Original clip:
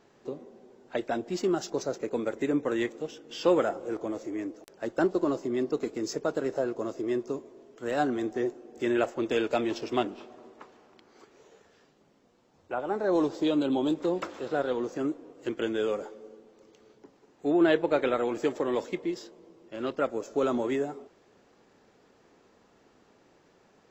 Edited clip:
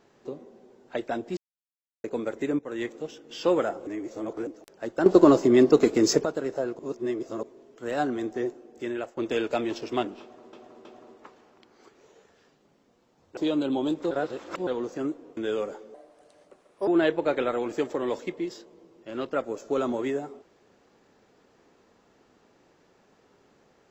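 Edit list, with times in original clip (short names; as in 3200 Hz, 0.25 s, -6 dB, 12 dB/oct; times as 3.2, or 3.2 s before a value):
1.37–2.04 mute
2.59–2.92 fade in linear, from -14 dB
3.87–4.47 reverse
5.06–6.25 gain +11.5 dB
6.79–7.43 reverse
8.54–9.17 fade out linear, to -12 dB
10.21–10.53 loop, 3 plays
12.73–13.37 cut
14.11–14.67 reverse
15.37–15.68 cut
16.25–17.53 speed 137%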